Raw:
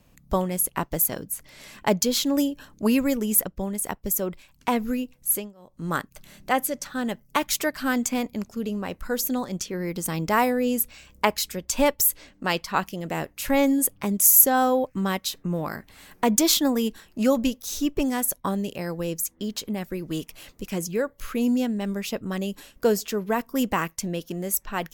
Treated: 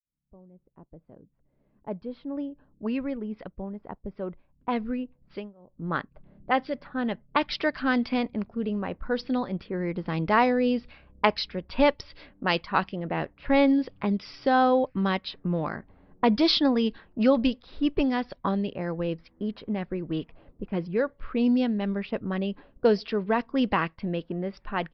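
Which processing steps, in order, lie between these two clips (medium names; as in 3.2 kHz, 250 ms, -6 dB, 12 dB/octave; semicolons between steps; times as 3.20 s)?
fade-in on the opening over 7.43 s; level-controlled noise filter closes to 410 Hz, open at -19 dBFS; resampled via 11.025 kHz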